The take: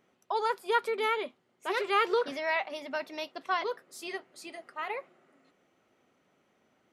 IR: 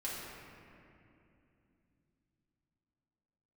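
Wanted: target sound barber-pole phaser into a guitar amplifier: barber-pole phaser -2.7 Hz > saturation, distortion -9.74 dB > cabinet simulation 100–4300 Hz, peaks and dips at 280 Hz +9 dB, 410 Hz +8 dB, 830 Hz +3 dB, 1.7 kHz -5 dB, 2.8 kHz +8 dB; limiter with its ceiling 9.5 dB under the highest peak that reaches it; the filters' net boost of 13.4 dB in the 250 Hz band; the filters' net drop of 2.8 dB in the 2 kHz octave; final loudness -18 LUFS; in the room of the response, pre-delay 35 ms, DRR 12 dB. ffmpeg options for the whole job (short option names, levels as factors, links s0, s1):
-filter_complex "[0:a]equalizer=f=250:t=o:g=9,equalizer=f=2000:t=o:g=-4,alimiter=level_in=1.06:limit=0.0631:level=0:latency=1,volume=0.944,asplit=2[s0][s1];[1:a]atrim=start_sample=2205,adelay=35[s2];[s1][s2]afir=irnorm=-1:irlink=0,volume=0.188[s3];[s0][s3]amix=inputs=2:normalize=0,asplit=2[s4][s5];[s5]afreqshift=-2.7[s6];[s4][s6]amix=inputs=2:normalize=1,asoftclip=threshold=0.0158,highpass=100,equalizer=f=280:t=q:w=4:g=9,equalizer=f=410:t=q:w=4:g=8,equalizer=f=830:t=q:w=4:g=3,equalizer=f=1700:t=q:w=4:g=-5,equalizer=f=2800:t=q:w=4:g=8,lowpass=f=4300:w=0.5412,lowpass=f=4300:w=1.3066,volume=8.91"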